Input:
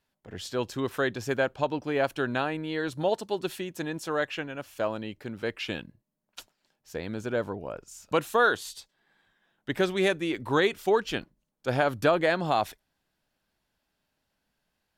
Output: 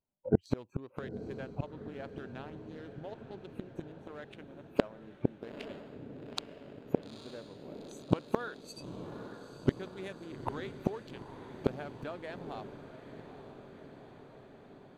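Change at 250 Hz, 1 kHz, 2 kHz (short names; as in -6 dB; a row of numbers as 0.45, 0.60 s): -5.0, -14.5, -18.0 dB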